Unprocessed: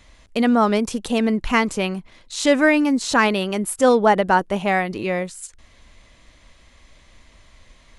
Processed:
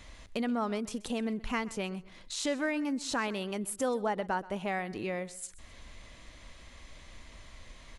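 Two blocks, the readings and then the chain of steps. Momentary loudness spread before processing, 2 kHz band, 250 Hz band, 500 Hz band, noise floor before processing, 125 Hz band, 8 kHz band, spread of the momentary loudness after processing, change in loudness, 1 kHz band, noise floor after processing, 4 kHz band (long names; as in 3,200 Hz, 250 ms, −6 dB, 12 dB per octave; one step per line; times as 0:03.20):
12 LU, −15.0 dB, −14.0 dB, −15.0 dB, −53 dBFS, −13.0 dB, −10.0 dB, 21 LU, −15.0 dB, −15.5 dB, −53 dBFS, −12.0 dB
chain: downward compressor 2 to 1, threshold −42 dBFS, peak gain reduction 17 dB
on a send: repeating echo 129 ms, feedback 29%, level −19.5 dB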